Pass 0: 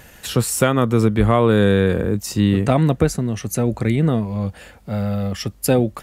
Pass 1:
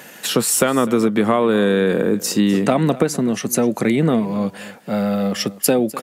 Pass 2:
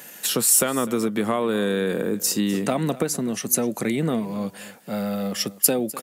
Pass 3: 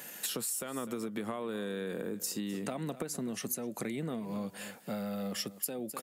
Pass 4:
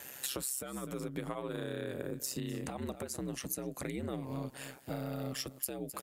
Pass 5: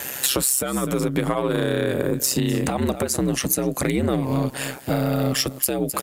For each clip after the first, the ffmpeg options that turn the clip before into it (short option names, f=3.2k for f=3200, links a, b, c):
-af "highpass=f=180:w=0.5412,highpass=f=180:w=1.3066,acompressor=threshold=-18dB:ratio=6,aecho=1:1:252:0.126,volume=6dB"
-af "highshelf=f=5.9k:g=12,volume=-7dB"
-af "bandreject=f=5.9k:w=24,acompressor=threshold=-29dB:ratio=10,volume=-4dB"
-af "aeval=exprs='val(0)*sin(2*PI*66*n/s)':c=same,volume=1dB"
-af "aeval=exprs='0.133*sin(PI/2*2.24*val(0)/0.133)':c=same,volume=6.5dB"